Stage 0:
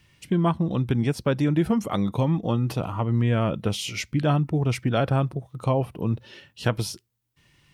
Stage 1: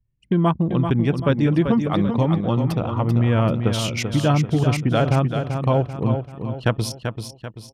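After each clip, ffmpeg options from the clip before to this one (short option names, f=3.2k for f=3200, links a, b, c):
-filter_complex "[0:a]anlmdn=10,asplit=2[a][b];[b]aecho=0:1:388|776|1164|1552|1940:0.447|0.197|0.0865|0.0381|0.0167[c];[a][c]amix=inputs=2:normalize=0,volume=3.5dB"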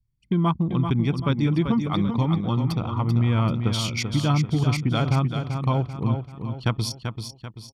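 -af "equalizer=f=4.5k:t=o:w=0.67:g=7,aecho=1:1:0.9:0.49,volume=-5dB"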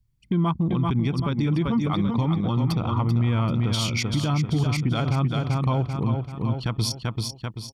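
-af "alimiter=limit=-20.5dB:level=0:latency=1:release=118,volume=5.5dB"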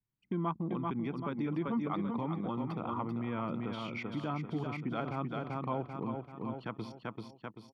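-filter_complex "[0:a]acrossover=split=3800[a][b];[b]acompressor=threshold=-39dB:ratio=4:attack=1:release=60[c];[a][c]amix=inputs=2:normalize=0,acrossover=split=190 2500:gain=0.0794 1 0.1[d][e][f];[d][e][f]amix=inputs=3:normalize=0,volume=-7dB"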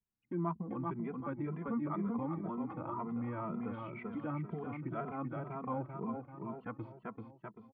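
-filter_complex "[0:a]lowpass=f=2k:w=0.5412,lowpass=f=2k:w=1.3066,asplit=2[a][b];[b]adelay=2.6,afreqshift=2[c];[a][c]amix=inputs=2:normalize=1"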